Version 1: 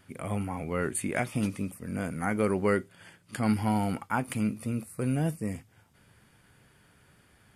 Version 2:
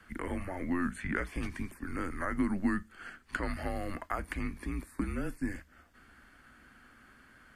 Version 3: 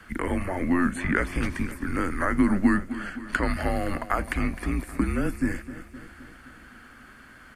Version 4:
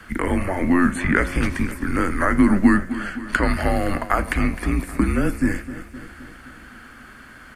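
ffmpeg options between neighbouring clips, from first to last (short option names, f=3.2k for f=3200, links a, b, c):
-filter_complex "[0:a]afreqshift=-180,acrossover=split=88|4600[a][b][c];[a]acompressor=threshold=-37dB:ratio=4[d];[b]acompressor=threshold=-36dB:ratio=4[e];[c]acompressor=threshold=-51dB:ratio=4[f];[d][e][f]amix=inputs=3:normalize=0,equalizer=f=100:t=o:w=0.67:g=-8,equalizer=f=250:t=o:w=0.67:g=12,equalizer=f=1.6k:t=o:w=0.67:g=11,equalizer=f=10k:t=o:w=0.67:g=-6,volume=-1dB"
-af "aecho=1:1:259|518|777|1036|1295|1554:0.2|0.118|0.0695|0.041|0.0242|0.0143,volume=9dB"
-af "bandreject=f=90.85:t=h:w=4,bandreject=f=181.7:t=h:w=4,bandreject=f=272.55:t=h:w=4,bandreject=f=363.4:t=h:w=4,bandreject=f=454.25:t=h:w=4,bandreject=f=545.1:t=h:w=4,bandreject=f=635.95:t=h:w=4,bandreject=f=726.8:t=h:w=4,bandreject=f=817.65:t=h:w=4,bandreject=f=908.5:t=h:w=4,bandreject=f=999.35:t=h:w=4,bandreject=f=1.0902k:t=h:w=4,bandreject=f=1.18105k:t=h:w=4,bandreject=f=1.2719k:t=h:w=4,bandreject=f=1.36275k:t=h:w=4,bandreject=f=1.4536k:t=h:w=4,bandreject=f=1.54445k:t=h:w=4,bandreject=f=1.6353k:t=h:w=4,bandreject=f=1.72615k:t=h:w=4,bandreject=f=1.817k:t=h:w=4,bandreject=f=1.90785k:t=h:w=4,bandreject=f=1.9987k:t=h:w=4,bandreject=f=2.08955k:t=h:w=4,bandreject=f=2.1804k:t=h:w=4,bandreject=f=2.27125k:t=h:w=4,bandreject=f=2.3621k:t=h:w=4,bandreject=f=2.45295k:t=h:w=4,bandreject=f=2.5438k:t=h:w=4,bandreject=f=2.63465k:t=h:w=4,bandreject=f=2.7255k:t=h:w=4,bandreject=f=2.81635k:t=h:w=4,bandreject=f=2.9072k:t=h:w=4,bandreject=f=2.99805k:t=h:w=4,bandreject=f=3.0889k:t=h:w=4,volume=6dB"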